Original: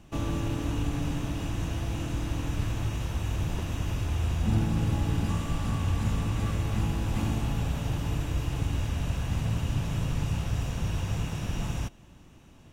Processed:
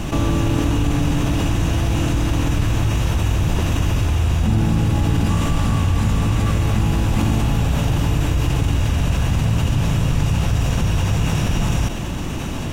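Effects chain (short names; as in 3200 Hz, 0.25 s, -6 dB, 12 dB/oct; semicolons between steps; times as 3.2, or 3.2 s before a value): fast leveller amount 70%; gain +6 dB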